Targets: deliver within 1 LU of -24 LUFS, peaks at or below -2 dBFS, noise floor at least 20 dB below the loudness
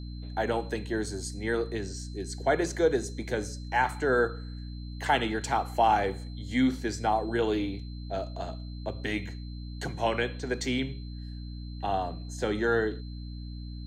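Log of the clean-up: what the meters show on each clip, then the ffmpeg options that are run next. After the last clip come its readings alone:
hum 60 Hz; highest harmonic 300 Hz; hum level -36 dBFS; steady tone 4.1 kHz; tone level -53 dBFS; loudness -30.0 LUFS; peak level -11.5 dBFS; loudness target -24.0 LUFS
-> -af "bandreject=f=60:t=h:w=4,bandreject=f=120:t=h:w=4,bandreject=f=180:t=h:w=4,bandreject=f=240:t=h:w=4,bandreject=f=300:t=h:w=4"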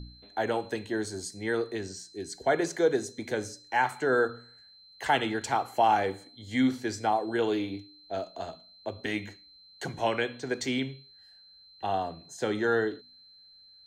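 hum not found; steady tone 4.1 kHz; tone level -53 dBFS
-> -af "bandreject=f=4100:w=30"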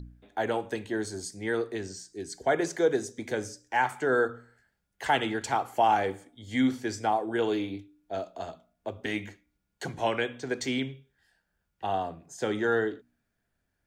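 steady tone not found; loudness -30.0 LUFS; peak level -12.0 dBFS; loudness target -24.0 LUFS
-> -af "volume=2"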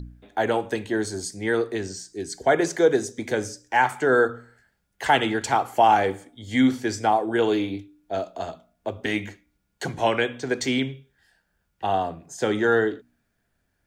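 loudness -24.0 LUFS; peak level -6.0 dBFS; noise floor -73 dBFS

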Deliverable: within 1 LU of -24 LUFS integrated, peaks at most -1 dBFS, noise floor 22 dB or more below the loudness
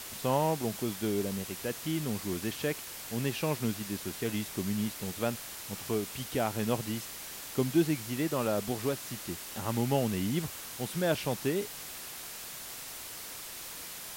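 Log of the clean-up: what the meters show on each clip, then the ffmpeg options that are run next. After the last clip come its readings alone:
noise floor -43 dBFS; noise floor target -56 dBFS; loudness -33.5 LUFS; peak level -15.5 dBFS; loudness target -24.0 LUFS
-> -af "afftdn=nr=13:nf=-43"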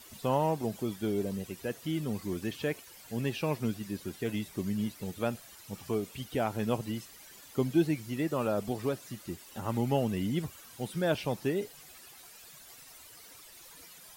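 noise floor -53 dBFS; noise floor target -56 dBFS
-> -af "afftdn=nr=6:nf=-53"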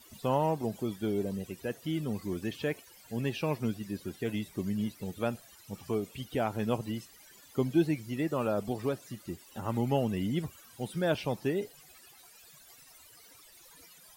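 noise floor -57 dBFS; loudness -33.5 LUFS; peak level -15.5 dBFS; loudness target -24.0 LUFS
-> -af "volume=2.99"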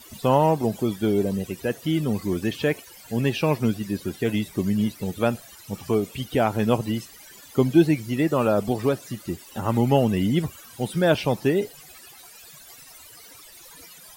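loudness -24.0 LUFS; peak level -6.0 dBFS; noise floor -47 dBFS

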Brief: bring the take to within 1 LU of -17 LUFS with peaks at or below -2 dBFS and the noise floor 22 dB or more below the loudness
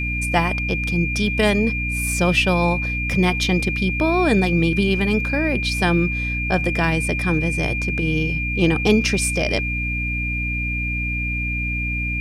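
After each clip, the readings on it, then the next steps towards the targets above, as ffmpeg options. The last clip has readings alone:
hum 60 Hz; highest harmonic 300 Hz; hum level -23 dBFS; steady tone 2.4 kHz; tone level -24 dBFS; loudness -20.0 LUFS; peak level -4.5 dBFS; loudness target -17.0 LUFS
-> -af "bandreject=f=60:t=h:w=6,bandreject=f=120:t=h:w=6,bandreject=f=180:t=h:w=6,bandreject=f=240:t=h:w=6,bandreject=f=300:t=h:w=6"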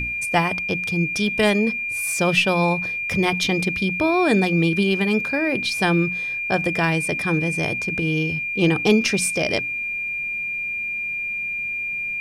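hum not found; steady tone 2.4 kHz; tone level -24 dBFS
-> -af "bandreject=f=2400:w=30"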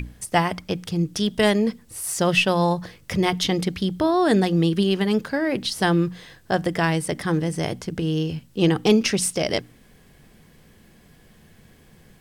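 steady tone not found; loudness -22.5 LUFS; peak level -4.5 dBFS; loudness target -17.0 LUFS
-> -af "volume=1.88,alimiter=limit=0.794:level=0:latency=1"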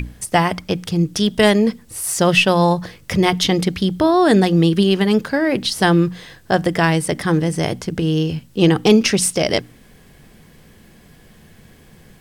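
loudness -17.0 LUFS; peak level -2.0 dBFS; noise floor -48 dBFS

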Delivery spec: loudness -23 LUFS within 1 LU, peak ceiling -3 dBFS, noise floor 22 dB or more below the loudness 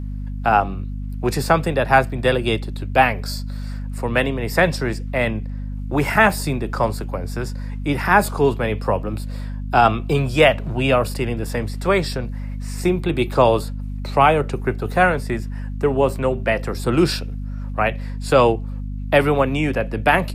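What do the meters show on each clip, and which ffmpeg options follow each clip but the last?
hum 50 Hz; highest harmonic 250 Hz; hum level -25 dBFS; loudness -20.0 LUFS; peak level -1.5 dBFS; loudness target -23.0 LUFS
-> -af "bandreject=f=50:t=h:w=4,bandreject=f=100:t=h:w=4,bandreject=f=150:t=h:w=4,bandreject=f=200:t=h:w=4,bandreject=f=250:t=h:w=4"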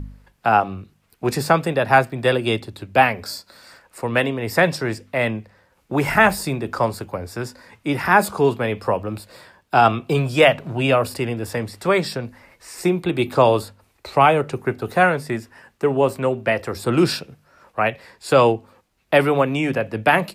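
hum not found; loudness -20.0 LUFS; peak level -2.0 dBFS; loudness target -23.0 LUFS
-> -af "volume=0.708"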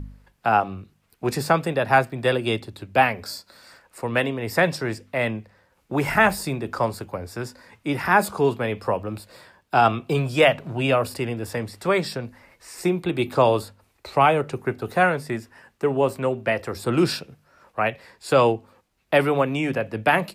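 loudness -23.0 LUFS; peak level -5.0 dBFS; noise floor -66 dBFS

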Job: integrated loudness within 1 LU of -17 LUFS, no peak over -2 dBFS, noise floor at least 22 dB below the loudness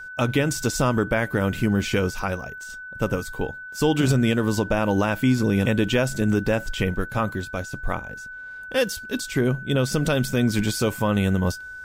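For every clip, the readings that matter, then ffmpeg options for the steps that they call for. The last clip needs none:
steady tone 1.5 kHz; tone level -35 dBFS; loudness -23.5 LUFS; peak level -7.0 dBFS; loudness target -17.0 LUFS
-> -af "bandreject=f=1500:w=30"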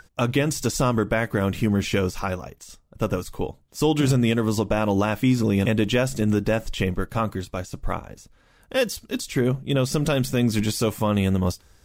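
steady tone not found; loudness -23.5 LUFS; peak level -7.5 dBFS; loudness target -17.0 LUFS
-> -af "volume=2.11,alimiter=limit=0.794:level=0:latency=1"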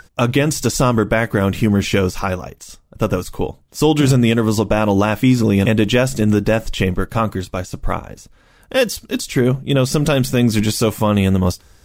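loudness -17.5 LUFS; peak level -2.0 dBFS; noise floor -52 dBFS

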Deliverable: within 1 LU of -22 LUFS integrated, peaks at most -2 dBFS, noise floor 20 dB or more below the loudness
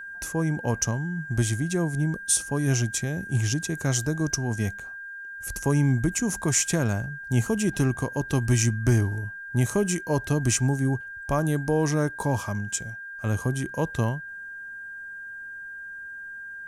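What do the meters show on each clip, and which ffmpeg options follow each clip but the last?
steady tone 1.6 kHz; tone level -36 dBFS; loudness -26.0 LUFS; peak level -9.5 dBFS; loudness target -22.0 LUFS
-> -af "bandreject=f=1600:w=30"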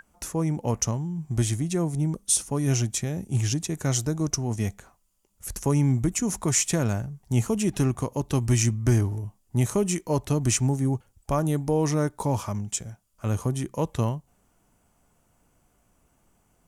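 steady tone not found; loudness -26.0 LUFS; peak level -9.5 dBFS; loudness target -22.0 LUFS
-> -af "volume=1.58"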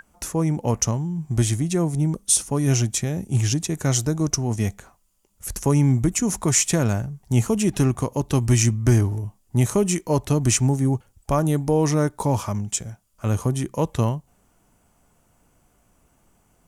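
loudness -22.0 LUFS; peak level -5.5 dBFS; noise floor -63 dBFS

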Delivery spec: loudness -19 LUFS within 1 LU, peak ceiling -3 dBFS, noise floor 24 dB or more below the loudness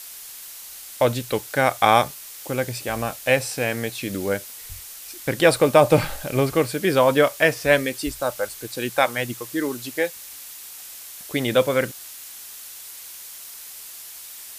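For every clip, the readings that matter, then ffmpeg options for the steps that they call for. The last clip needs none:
noise floor -40 dBFS; noise floor target -46 dBFS; loudness -22.0 LUFS; peak level -2.0 dBFS; loudness target -19.0 LUFS
-> -af "afftdn=nr=6:nf=-40"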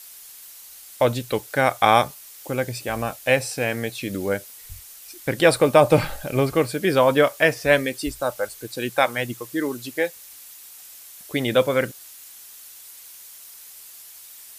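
noise floor -44 dBFS; noise floor target -46 dBFS
-> -af "afftdn=nr=6:nf=-44"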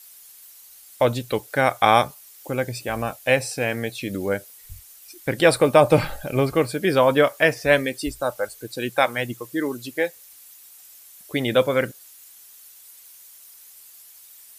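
noise floor -48 dBFS; loudness -22.0 LUFS; peak level -2.0 dBFS; loudness target -19.0 LUFS
-> -af "volume=1.41,alimiter=limit=0.708:level=0:latency=1"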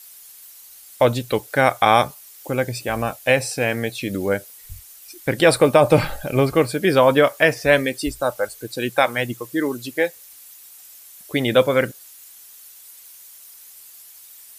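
loudness -19.5 LUFS; peak level -3.0 dBFS; noise floor -45 dBFS

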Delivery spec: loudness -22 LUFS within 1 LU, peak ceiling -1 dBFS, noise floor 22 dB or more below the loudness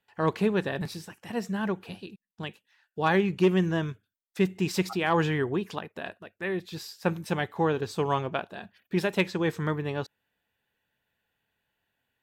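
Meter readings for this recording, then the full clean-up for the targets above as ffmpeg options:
loudness -28.5 LUFS; peak level -13.5 dBFS; loudness target -22.0 LUFS
-> -af "volume=2.11"

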